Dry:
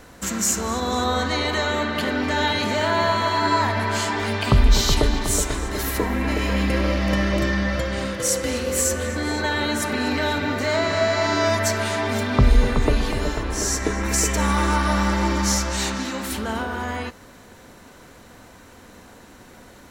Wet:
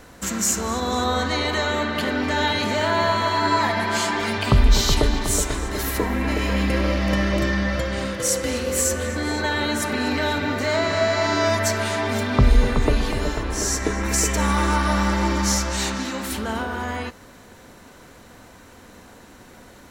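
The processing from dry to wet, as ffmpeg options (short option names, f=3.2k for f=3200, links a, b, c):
-filter_complex "[0:a]asettb=1/sr,asplit=3[a][b][c];[a]atrim=end=3.584[d];[b]atrim=start=3.58:end=4.38,asetpts=PTS-STARTPTS,afade=t=in:d=0.004:c=qsin,afade=t=out:st=0.796:d=0.004:c=qsin,aecho=1:1:5.8:0.67,atrim=end_sample=35280[e];[c]atrim=start=4.376[f];[d][e]acrossfade=d=0.004:c1=hsin:c2=qsin[g];[g][f]acrossfade=d=0.004:c1=qsin:c2=hsin"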